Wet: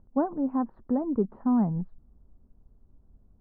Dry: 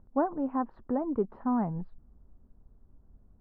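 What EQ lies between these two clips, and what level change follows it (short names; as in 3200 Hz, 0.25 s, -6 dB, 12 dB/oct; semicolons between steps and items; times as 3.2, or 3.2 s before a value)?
LPF 1200 Hz 6 dB/oct; dynamic EQ 200 Hz, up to +7 dB, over -43 dBFS, Q 1.3; 0.0 dB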